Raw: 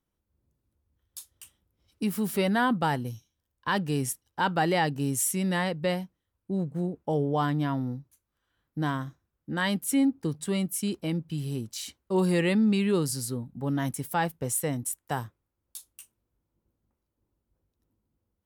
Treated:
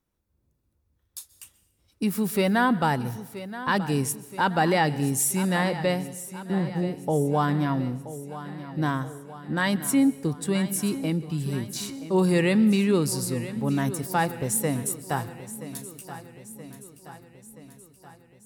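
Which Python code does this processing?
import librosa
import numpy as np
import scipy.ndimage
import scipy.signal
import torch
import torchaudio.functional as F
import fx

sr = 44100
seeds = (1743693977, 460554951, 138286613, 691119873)

y = fx.notch(x, sr, hz=3100.0, q=13.0)
y = fx.echo_feedback(y, sr, ms=976, feedback_pct=57, wet_db=-14.0)
y = fx.rev_plate(y, sr, seeds[0], rt60_s=1.0, hf_ratio=0.9, predelay_ms=115, drr_db=18.0)
y = y * 10.0 ** (3.0 / 20.0)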